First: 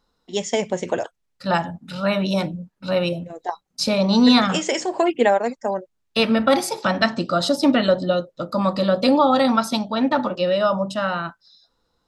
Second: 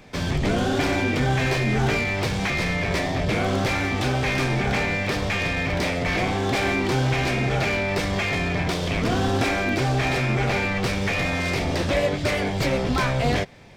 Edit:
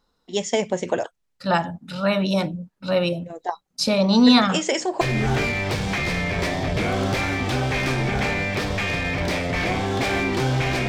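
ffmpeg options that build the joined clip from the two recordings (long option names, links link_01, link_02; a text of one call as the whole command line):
ffmpeg -i cue0.wav -i cue1.wav -filter_complex "[0:a]apad=whole_dur=10.88,atrim=end=10.88,atrim=end=5.012[link_01];[1:a]atrim=start=1.528:end=7.4[link_02];[link_01][link_02]acrossfade=duration=0.004:curve1=hsin:curve2=hsin" out.wav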